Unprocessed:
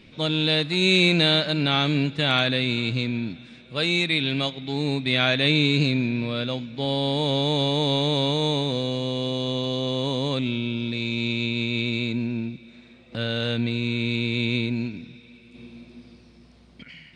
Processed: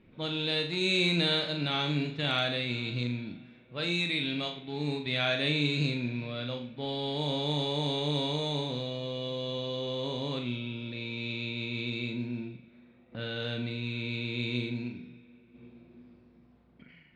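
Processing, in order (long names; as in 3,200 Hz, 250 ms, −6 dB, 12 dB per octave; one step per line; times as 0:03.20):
flutter between parallel walls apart 7 metres, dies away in 0.41 s
low-pass that shuts in the quiet parts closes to 1,600 Hz, open at −16 dBFS
level −9 dB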